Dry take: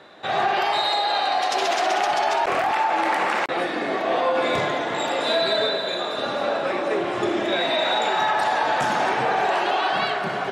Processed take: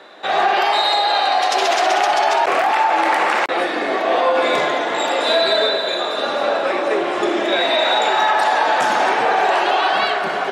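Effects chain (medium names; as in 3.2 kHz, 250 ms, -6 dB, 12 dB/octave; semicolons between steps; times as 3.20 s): high-pass 290 Hz 12 dB/octave; trim +5.5 dB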